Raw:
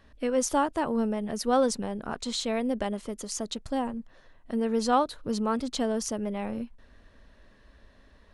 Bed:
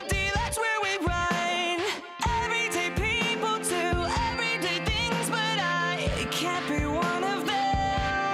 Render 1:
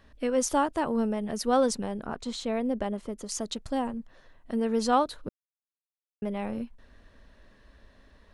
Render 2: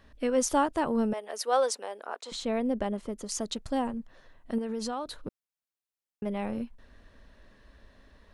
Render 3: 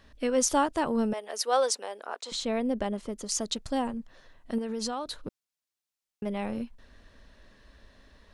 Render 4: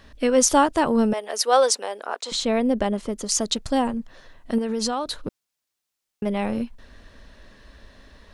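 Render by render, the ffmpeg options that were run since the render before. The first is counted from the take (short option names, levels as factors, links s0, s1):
-filter_complex "[0:a]asettb=1/sr,asplit=3[s0][s1][s2];[s0]atrim=end=2.054[s3];[s1]atrim=start=2.05:end=3.29,asetpts=PTS-STARTPTS,afade=t=in:d=0.004:c=qsin,afade=t=out:st=1.236:d=0.004:c=qsin,highshelf=f=2100:g=-8[s4];[s2]atrim=start=3.286[s5];[s3][s4]acrossfade=d=0.004:c1=hsin:c2=qsin[s6];[s6][s5]acrossfade=d=0.004:c1=qsin:c2=hsin,asplit=3[s7][s8][s9];[s7]atrim=end=5.29,asetpts=PTS-STARTPTS,afade=t=out:st=5.286:d=0.004:c=hsin[s10];[s8]atrim=start=5.29:end=6.22,asetpts=PTS-STARTPTS,volume=0[s11];[s9]atrim=start=6.22,asetpts=PTS-STARTPTS,afade=t=in:d=0.004:c=hsin[s12];[s10][s11][s12]concat=n=3:v=0:a=1"
-filter_complex "[0:a]asettb=1/sr,asplit=3[s0][s1][s2];[s0]atrim=end=1.134[s3];[s1]atrim=start=1.13:end=2.32,asetpts=PTS-STARTPTS,afade=t=in:d=0.004:c=qsin,afade=t=out:st=1.186:d=0.004:c=qsin,highpass=f=460:w=0.5412,highpass=f=460:w=1.3066[s4];[s2]atrim=start=2.316[s5];[s3][s4]acrossfade=d=0.004:c1=hsin:c2=qsin[s6];[s6][s5]acrossfade=d=0.004:c1=qsin:c2=hsin,asettb=1/sr,asplit=3[s7][s8][s9];[s7]atrim=end=4.584[s10];[s8]atrim=start=4.58:end=6.26,asetpts=PTS-STARTPTS,afade=t=in:d=0.004:c=qsin,afade=t=out:st=1.676:d=0.004:c=qsin,acompressor=threshold=0.0355:ratio=12:attack=3.2:release=140:knee=1:detection=peak[s11];[s9]atrim=start=6.256[s12];[s10][s11]acrossfade=d=0.004:c1=hsin:c2=qsin[s13];[s13][s12]acrossfade=d=0.004:c1=qsin:c2=hsin"
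-af "equalizer=f=5400:t=o:w=2:g=5"
-af "volume=2.37"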